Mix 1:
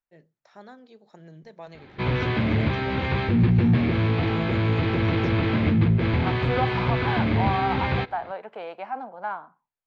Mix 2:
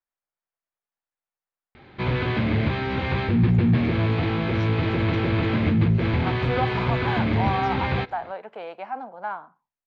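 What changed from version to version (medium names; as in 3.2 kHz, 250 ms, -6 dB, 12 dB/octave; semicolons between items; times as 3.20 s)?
first voice: entry +2.40 s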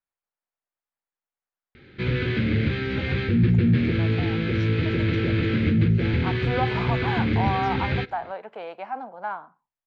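background: add high-order bell 840 Hz -15 dB 1.1 oct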